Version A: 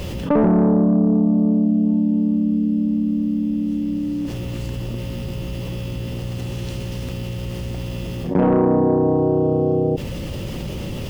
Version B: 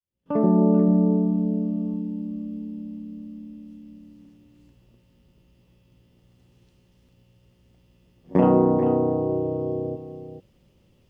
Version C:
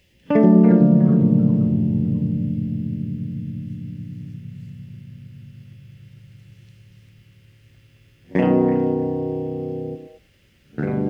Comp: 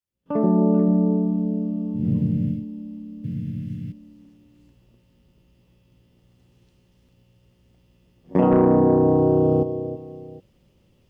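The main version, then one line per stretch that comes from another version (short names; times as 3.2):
B
2.01–2.57 from C, crossfade 0.16 s
3.24–3.92 from C
8.51–9.63 from A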